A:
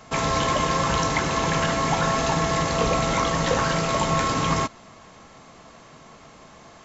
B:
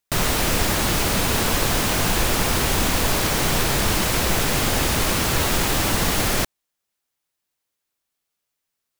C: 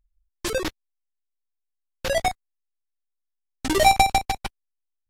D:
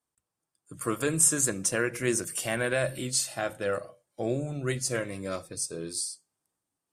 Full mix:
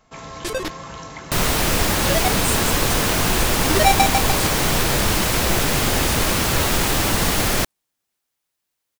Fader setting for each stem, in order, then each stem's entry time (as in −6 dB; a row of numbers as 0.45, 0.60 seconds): −12.5, +1.5, 0.0, −5.0 decibels; 0.00, 1.20, 0.00, 1.25 seconds